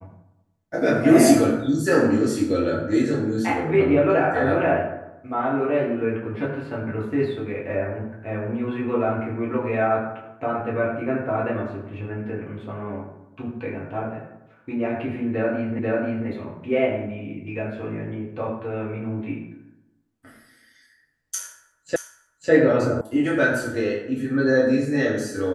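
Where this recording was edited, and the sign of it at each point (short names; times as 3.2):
15.79 repeat of the last 0.49 s
21.96 repeat of the last 0.55 s
23.01 sound cut off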